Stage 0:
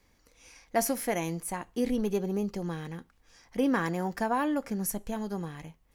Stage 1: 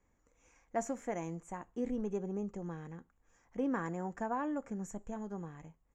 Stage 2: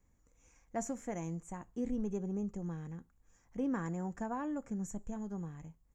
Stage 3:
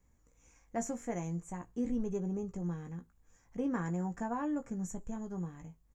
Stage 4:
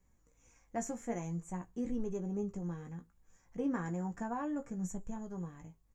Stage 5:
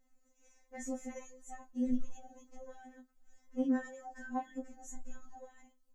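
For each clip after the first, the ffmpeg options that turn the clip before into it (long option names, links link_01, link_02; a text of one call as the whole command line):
ffmpeg -i in.wav -af "firequalizer=gain_entry='entry(1200,0);entry(4700,-21);entry(7100,3);entry(10000,-29)':delay=0.05:min_phase=1,volume=-7.5dB" out.wav
ffmpeg -i in.wav -af "bass=frequency=250:gain=9,treble=frequency=4000:gain=7,volume=-4dB" out.wav
ffmpeg -i in.wav -filter_complex "[0:a]asplit=2[link_01][link_02];[link_02]adelay=17,volume=-7dB[link_03];[link_01][link_03]amix=inputs=2:normalize=0,volume=1dB" out.wav
ffmpeg -i in.wav -af "flanger=delay=5.2:depth=4.7:regen=64:speed=0.6:shape=sinusoidal,volume=3dB" out.wav
ffmpeg -i in.wav -af "afftfilt=real='re*3.46*eq(mod(b,12),0)':imag='im*3.46*eq(mod(b,12),0)':win_size=2048:overlap=0.75,volume=1dB" out.wav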